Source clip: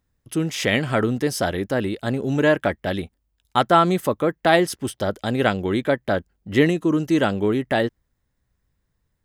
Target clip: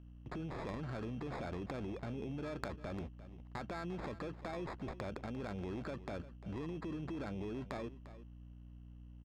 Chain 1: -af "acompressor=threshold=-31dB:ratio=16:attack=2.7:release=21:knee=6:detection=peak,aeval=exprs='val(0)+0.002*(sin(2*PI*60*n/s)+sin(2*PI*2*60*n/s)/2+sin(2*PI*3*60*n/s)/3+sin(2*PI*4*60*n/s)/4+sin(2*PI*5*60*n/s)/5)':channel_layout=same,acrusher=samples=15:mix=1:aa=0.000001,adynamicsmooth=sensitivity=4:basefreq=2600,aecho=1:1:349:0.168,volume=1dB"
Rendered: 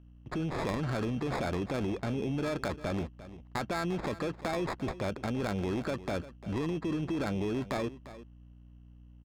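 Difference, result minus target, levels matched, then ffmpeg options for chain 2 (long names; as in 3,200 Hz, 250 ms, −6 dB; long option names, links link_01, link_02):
downward compressor: peak gain reduction −10 dB
-af "acompressor=threshold=-41.5dB:ratio=16:attack=2.7:release=21:knee=6:detection=peak,aeval=exprs='val(0)+0.002*(sin(2*PI*60*n/s)+sin(2*PI*2*60*n/s)/2+sin(2*PI*3*60*n/s)/3+sin(2*PI*4*60*n/s)/4+sin(2*PI*5*60*n/s)/5)':channel_layout=same,acrusher=samples=15:mix=1:aa=0.000001,adynamicsmooth=sensitivity=4:basefreq=2600,aecho=1:1:349:0.168,volume=1dB"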